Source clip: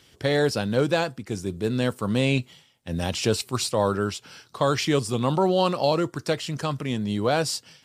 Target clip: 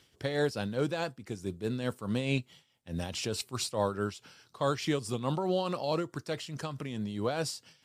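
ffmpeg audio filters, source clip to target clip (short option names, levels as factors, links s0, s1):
-af "tremolo=f=4.7:d=0.55,volume=0.501"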